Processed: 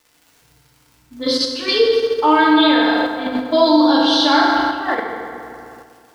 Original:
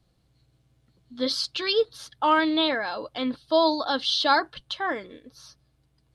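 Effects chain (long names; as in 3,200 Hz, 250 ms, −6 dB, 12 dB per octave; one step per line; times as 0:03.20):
low-pass that shuts in the quiet parts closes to 400 Hz, open at −22 dBFS
noise gate with hold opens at −56 dBFS
surface crackle 140 per second −41 dBFS
feedback delay network reverb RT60 2.4 s, low-frequency decay 1×, high-frequency decay 0.6×, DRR −6 dB
in parallel at −2 dB: output level in coarse steps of 22 dB
on the sum: level −1 dB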